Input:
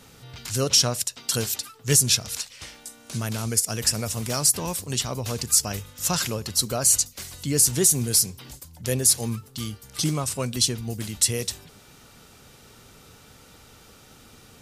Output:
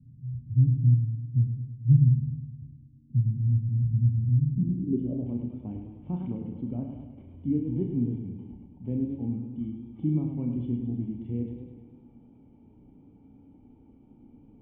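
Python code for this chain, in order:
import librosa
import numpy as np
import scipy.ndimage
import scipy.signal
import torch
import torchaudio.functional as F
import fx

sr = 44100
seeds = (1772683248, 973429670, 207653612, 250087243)

y = fx.formant_cascade(x, sr, vowel='i')
y = fx.low_shelf(y, sr, hz=360.0, db=6.5)
y = fx.room_flutter(y, sr, wall_m=5.7, rt60_s=0.3)
y = fx.filter_sweep_lowpass(y, sr, from_hz=130.0, to_hz=870.0, start_s=4.45, end_s=5.31, q=6.6)
y = fx.dynamic_eq(y, sr, hz=730.0, q=0.72, threshold_db=-43.0, ratio=4.0, max_db=-3)
y = fx.echo_warbled(y, sr, ms=104, feedback_pct=61, rate_hz=2.8, cents=81, wet_db=-7)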